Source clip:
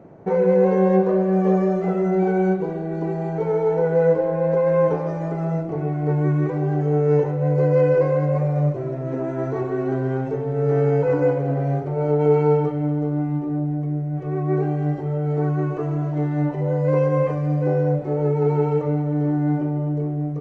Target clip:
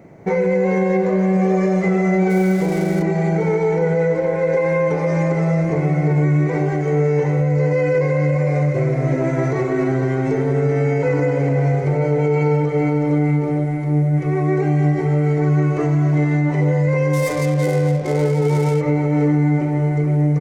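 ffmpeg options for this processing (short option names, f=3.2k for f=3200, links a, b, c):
-filter_complex "[0:a]equalizer=f=2.1k:w=4.5:g=15,aecho=1:1:459|918|1377|1836|2295:0.376|0.169|0.0761|0.0342|0.0154,dynaudnorm=f=110:g=5:m=5dB,asplit=3[a][b][c];[a]afade=t=out:st=2.29:d=0.02[d];[b]aeval=exprs='sgn(val(0))*max(abs(val(0))-0.0119,0)':c=same,afade=t=in:st=2.29:d=0.02,afade=t=out:st=3.01:d=0.02[e];[c]afade=t=in:st=3.01:d=0.02[f];[d][e][f]amix=inputs=3:normalize=0,asettb=1/sr,asplit=3[g][h][i];[g]atrim=end=17.134[j];[h]atrim=start=17.13:end=18.81,asetpts=PTS-STARTPTS,afade=t=in:d=0.004:c=qsin,afade=t=out:st=1.676:d=0.004:c=qsin,adynamicsmooth=sensitivity=7.5:basefreq=1.4k[k];[i]atrim=start=18.806[l];[j][k]acrossfade=d=0.004:c1=hsin:c2=qsin[m];[m][l]acrossfade=d=0.004:c1=qsin:c2=hsin,bass=f=250:g=3,treble=f=4k:g=15,alimiter=limit=-10dB:level=0:latency=1:release=96"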